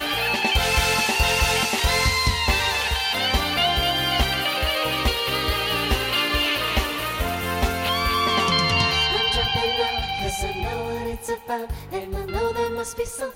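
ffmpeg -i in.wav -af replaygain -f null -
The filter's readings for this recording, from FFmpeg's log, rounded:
track_gain = +2.0 dB
track_peak = 0.338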